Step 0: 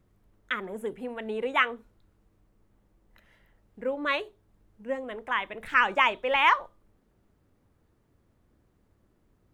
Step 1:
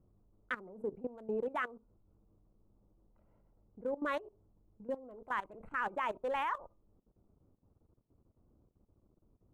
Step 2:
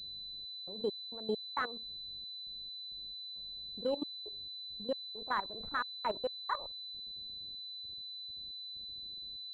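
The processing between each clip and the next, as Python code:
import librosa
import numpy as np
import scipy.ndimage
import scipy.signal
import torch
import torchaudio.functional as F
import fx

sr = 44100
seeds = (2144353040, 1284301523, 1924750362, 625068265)

y1 = fx.wiener(x, sr, points=25)
y1 = fx.band_shelf(y1, sr, hz=3500.0, db=-11.0, octaves=1.7)
y1 = fx.level_steps(y1, sr, step_db=17)
y2 = fx.step_gate(y1, sr, bpm=67, pattern='xx.x.x.x', floor_db=-60.0, edge_ms=4.5)
y2 = fx.pwm(y2, sr, carrier_hz=4000.0)
y2 = y2 * 10.0 ** (3.0 / 20.0)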